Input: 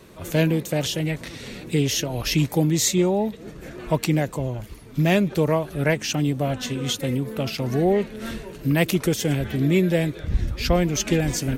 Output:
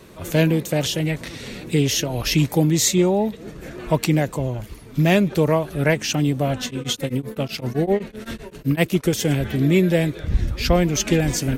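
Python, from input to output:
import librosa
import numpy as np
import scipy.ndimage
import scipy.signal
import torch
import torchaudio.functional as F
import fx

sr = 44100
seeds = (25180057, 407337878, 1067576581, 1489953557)

y = fx.tremolo_abs(x, sr, hz=7.8, at=(6.65, 9.13))
y = F.gain(torch.from_numpy(y), 2.5).numpy()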